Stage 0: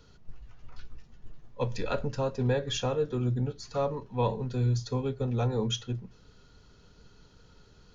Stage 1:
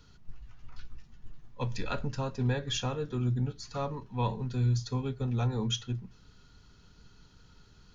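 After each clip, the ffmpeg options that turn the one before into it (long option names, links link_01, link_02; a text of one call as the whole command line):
ffmpeg -i in.wav -af "equalizer=frequency=510:width_type=o:width=0.94:gain=-8.5" out.wav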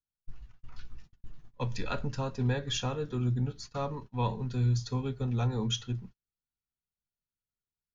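ffmpeg -i in.wav -af "agate=range=-43dB:threshold=-44dB:ratio=16:detection=peak" out.wav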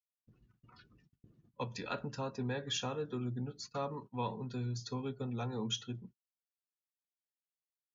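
ffmpeg -i in.wav -af "acompressor=threshold=-47dB:ratio=1.5,afftdn=noise_reduction=18:noise_floor=-62,highpass=170,volume=3dB" out.wav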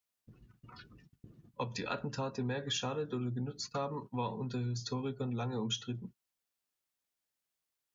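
ffmpeg -i in.wav -af "acompressor=threshold=-45dB:ratio=2,volume=7.5dB" out.wav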